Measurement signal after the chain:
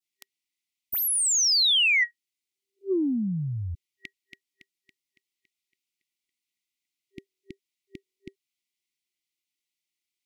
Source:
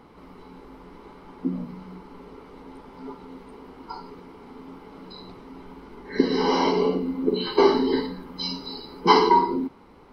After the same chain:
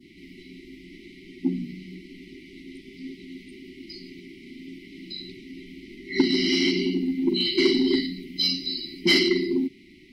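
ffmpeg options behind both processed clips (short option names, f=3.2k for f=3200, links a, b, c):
-filter_complex "[0:a]adynamicequalizer=threshold=0.00891:dfrequency=2200:dqfactor=0.85:tfrequency=2200:tqfactor=0.85:attack=5:release=100:ratio=0.375:range=1.5:mode=cutabove:tftype=bell,afftfilt=real='re*(1-between(b*sr/4096,390,1900))':imag='im*(1-between(b*sr/4096,390,1900))':win_size=4096:overlap=0.75,asplit=2[a][b];[b]highpass=f=720:p=1,volume=16dB,asoftclip=type=tanh:threshold=-7dB[c];[a][c]amix=inputs=2:normalize=0,lowpass=f=4.4k:p=1,volume=-6dB"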